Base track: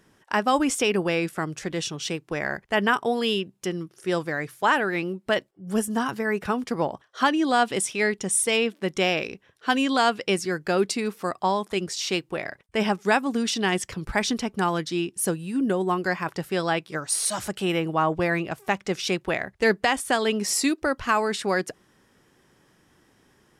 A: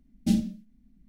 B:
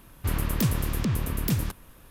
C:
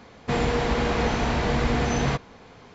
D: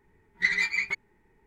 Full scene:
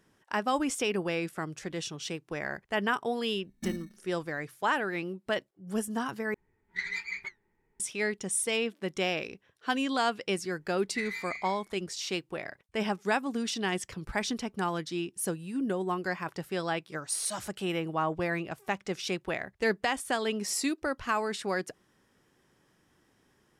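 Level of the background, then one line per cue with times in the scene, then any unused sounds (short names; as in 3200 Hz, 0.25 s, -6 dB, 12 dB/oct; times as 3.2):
base track -7 dB
3.36 add A -12.5 dB + sample-and-hold 22×
6.34 replace with D -5 dB + flange 1.4 Hz, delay 4.4 ms, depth 7.3 ms, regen -64%
10.53 add D -14 dB + spectral trails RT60 0.43 s
not used: B, C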